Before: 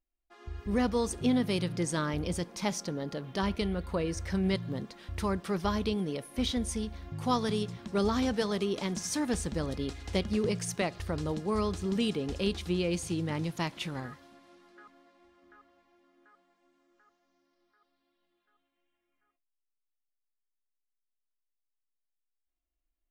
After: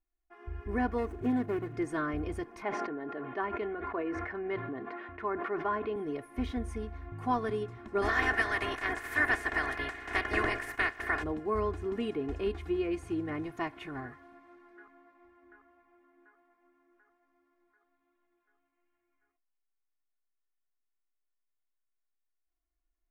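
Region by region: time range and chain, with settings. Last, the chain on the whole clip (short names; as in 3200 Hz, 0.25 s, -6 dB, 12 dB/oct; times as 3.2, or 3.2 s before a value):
0.98–1.76 median filter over 25 samples + bell 7300 Hz +4 dB 2.4 oct
2.62–5.96 BPF 200–2500 Hz + low shelf 340 Hz -4.5 dB + sustainer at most 28 dB/s
8.01–11.22 spectral limiter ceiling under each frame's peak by 28 dB + bell 1800 Hz +8 dB 0.4 oct
whole clip: resonant high shelf 2700 Hz -12.5 dB, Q 1.5; comb 2.8 ms, depth 86%; dynamic EQ 6200 Hz, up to -4 dB, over -54 dBFS, Q 0.98; gain -3.5 dB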